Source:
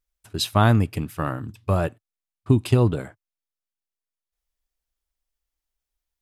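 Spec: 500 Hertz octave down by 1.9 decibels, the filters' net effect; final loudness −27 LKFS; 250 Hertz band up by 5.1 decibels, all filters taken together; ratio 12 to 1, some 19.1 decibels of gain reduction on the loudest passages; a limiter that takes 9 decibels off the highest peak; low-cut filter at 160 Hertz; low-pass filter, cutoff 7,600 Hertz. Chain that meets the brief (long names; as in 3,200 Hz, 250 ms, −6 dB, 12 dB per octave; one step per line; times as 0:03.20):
high-pass filter 160 Hz
low-pass filter 7,600 Hz
parametric band 250 Hz +8.5 dB
parametric band 500 Hz −6 dB
downward compressor 12 to 1, threshold −29 dBFS
level +10.5 dB
brickwall limiter −13 dBFS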